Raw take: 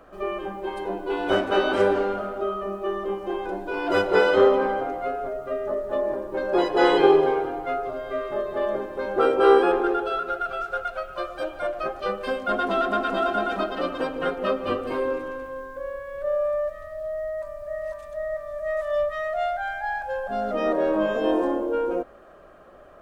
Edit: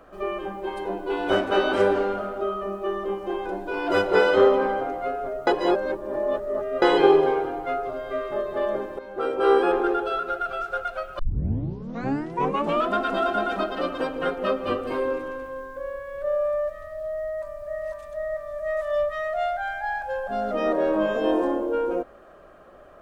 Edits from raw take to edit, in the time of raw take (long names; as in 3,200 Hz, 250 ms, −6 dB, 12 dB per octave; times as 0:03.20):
0:05.47–0:06.82: reverse
0:08.99–0:09.79: fade in, from −13.5 dB
0:11.19: tape start 1.76 s